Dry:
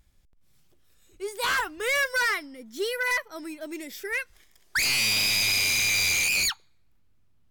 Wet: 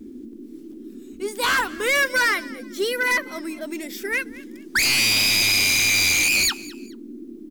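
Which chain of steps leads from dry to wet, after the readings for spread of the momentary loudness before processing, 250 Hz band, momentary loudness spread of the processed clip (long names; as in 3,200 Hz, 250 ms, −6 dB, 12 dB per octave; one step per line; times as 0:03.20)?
17 LU, +10.0 dB, 17 LU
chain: noise in a band 220–360 Hz −44 dBFS
bit reduction 12 bits
echo with shifted repeats 213 ms, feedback 31%, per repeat +44 Hz, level −20 dB
level +5 dB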